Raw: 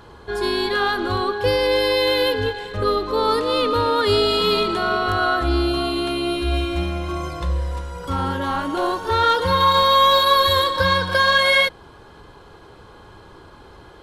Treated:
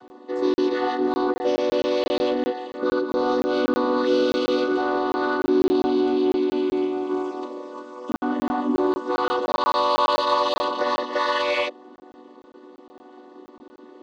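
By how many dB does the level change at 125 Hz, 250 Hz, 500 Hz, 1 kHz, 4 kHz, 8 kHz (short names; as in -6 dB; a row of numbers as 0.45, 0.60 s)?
-19.5 dB, +3.5 dB, -1.5 dB, -5.0 dB, -11.5 dB, n/a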